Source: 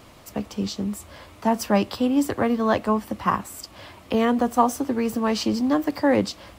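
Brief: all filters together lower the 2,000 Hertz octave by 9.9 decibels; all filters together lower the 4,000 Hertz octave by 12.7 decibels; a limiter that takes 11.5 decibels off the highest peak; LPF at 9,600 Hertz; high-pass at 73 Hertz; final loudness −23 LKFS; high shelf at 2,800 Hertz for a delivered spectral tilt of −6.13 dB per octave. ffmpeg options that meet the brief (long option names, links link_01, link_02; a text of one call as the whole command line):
ffmpeg -i in.wav -af "highpass=73,lowpass=9600,equalizer=frequency=2000:width_type=o:gain=-8.5,highshelf=frequency=2800:gain=-7,equalizer=frequency=4000:width_type=o:gain=-8,volume=4.5dB,alimiter=limit=-13dB:level=0:latency=1" out.wav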